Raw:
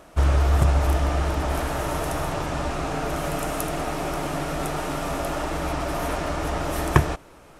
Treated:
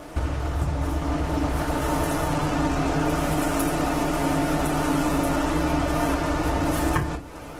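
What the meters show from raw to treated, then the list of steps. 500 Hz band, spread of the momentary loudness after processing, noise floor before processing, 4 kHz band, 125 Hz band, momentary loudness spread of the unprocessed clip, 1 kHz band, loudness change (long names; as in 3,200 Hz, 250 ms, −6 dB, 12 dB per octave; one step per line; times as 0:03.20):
+0.5 dB, 4 LU, −49 dBFS, +0.5 dB, −2.0 dB, 7 LU, +1.0 dB, +1.0 dB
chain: downward compressor 6 to 1, threshold −32 dBFS, peak gain reduction 20.5 dB
feedback delay network reverb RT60 0.34 s, low-frequency decay 1.6×, high-frequency decay 0.85×, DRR 1.5 dB
level +7.5 dB
Opus 16 kbit/s 48,000 Hz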